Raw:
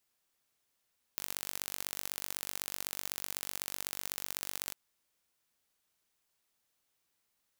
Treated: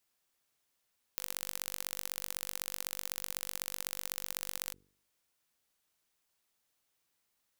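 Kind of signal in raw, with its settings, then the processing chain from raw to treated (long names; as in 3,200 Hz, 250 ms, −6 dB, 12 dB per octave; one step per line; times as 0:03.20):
impulse train 48 per second, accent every 3, −8 dBFS 3.55 s
hum removal 48.43 Hz, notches 10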